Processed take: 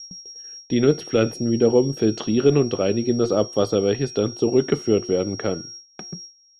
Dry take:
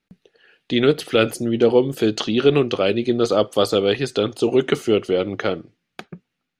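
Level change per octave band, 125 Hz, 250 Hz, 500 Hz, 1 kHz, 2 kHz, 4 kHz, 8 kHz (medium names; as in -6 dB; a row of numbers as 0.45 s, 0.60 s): +2.0 dB, 0.0 dB, -2.0 dB, -5.0 dB, -8.0 dB, -4.5 dB, no reading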